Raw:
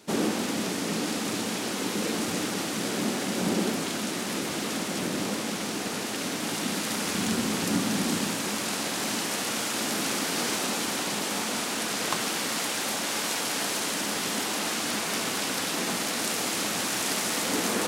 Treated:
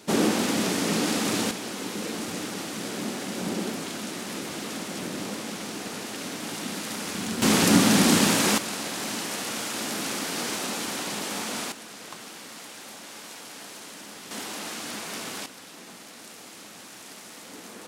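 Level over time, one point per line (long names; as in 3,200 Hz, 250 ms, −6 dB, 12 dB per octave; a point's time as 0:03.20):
+4 dB
from 0:01.51 −3.5 dB
from 0:07.42 +8 dB
from 0:08.58 −2 dB
from 0:11.72 −13 dB
from 0:14.31 −6 dB
from 0:15.46 −16 dB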